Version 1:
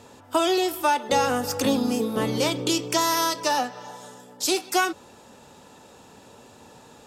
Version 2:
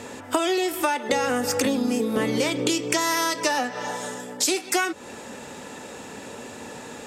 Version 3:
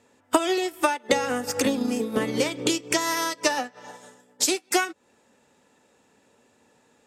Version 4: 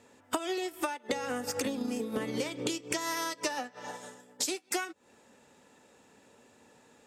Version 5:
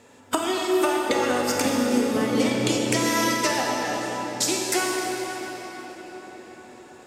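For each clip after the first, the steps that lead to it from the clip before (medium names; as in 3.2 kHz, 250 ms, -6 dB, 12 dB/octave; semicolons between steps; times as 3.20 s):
graphic EQ 250/500/2000/8000 Hz +6/+5/+11/+7 dB; compression 6:1, threshold -26 dBFS, peak gain reduction 14 dB; trim +5 dB
upward expansion 2.5:1, over -37 dBFS; trim +4.5 dB
compression 3:1, threshold -35 dBFS, peak gain reduction 15.5 dB; trim +1.5 dB
reverberation RT60 5.5 s, pre-delay 24 ms, DRR -2 dB; trim +7 dB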